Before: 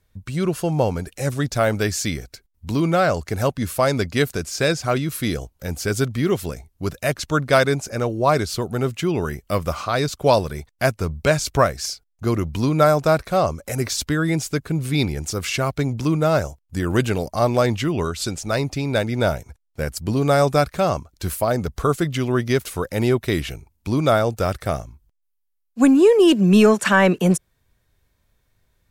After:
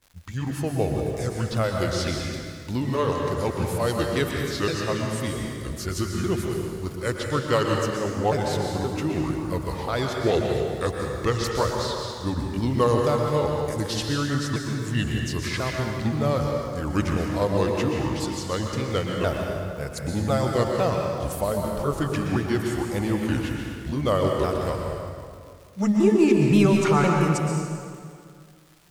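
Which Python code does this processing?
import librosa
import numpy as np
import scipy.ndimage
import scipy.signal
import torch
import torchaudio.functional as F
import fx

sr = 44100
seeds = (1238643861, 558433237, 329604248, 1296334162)

y = fx.pitch_ramps(x, sr, semitones=-5.5, every_ms=520)
y = fx.dmg_crackle(y, sr, seeds[0], per_s=220.0, level_db=-37.0)
y = fx.rev_plate(y, sr, seeds[1], rt60_s=2.2, hf_ratio=0.75, predelay_ms=105, drr_db=0.5)
y = y * librosa.db_to_amplitude(-5.5)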